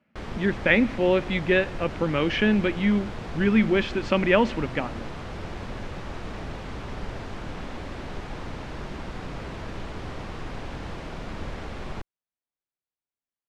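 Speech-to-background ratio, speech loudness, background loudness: 13.5 dB, −23.5 LKFS, −37.0 LKFS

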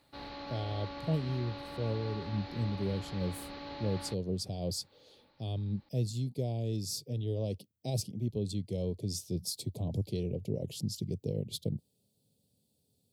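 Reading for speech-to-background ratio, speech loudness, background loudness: 8.0 dB, −36.0 LKFS, −44.0 LKFS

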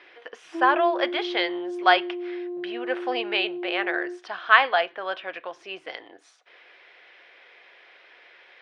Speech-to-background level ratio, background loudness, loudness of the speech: 9.0 dB, −33.0 LKFS, −24.0 LKFS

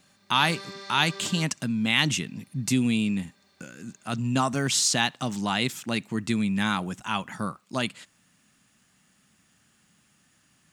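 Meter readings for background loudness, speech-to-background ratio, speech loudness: −41.0 LKFS, 15.0 dB, −26.0 LKFS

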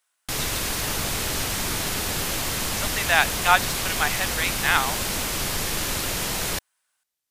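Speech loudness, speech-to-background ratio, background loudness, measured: −23.5 LKFS, 1.5 dB, −25.0 LKFS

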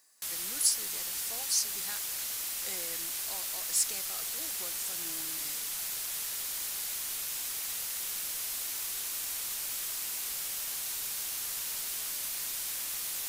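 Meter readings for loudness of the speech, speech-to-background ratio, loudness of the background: −32.5 LKFS, 0.5 dB, −33.0 LKFS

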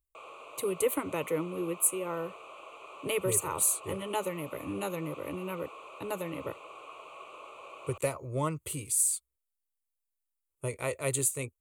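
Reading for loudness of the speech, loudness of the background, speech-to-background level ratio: −31.5 LKFS, −47.5 LKFS, 16.0 dB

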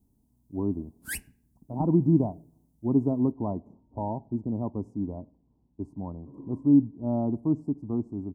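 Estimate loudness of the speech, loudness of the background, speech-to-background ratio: −28.0 LKFS, −37.5 LKFS, 9.5 dB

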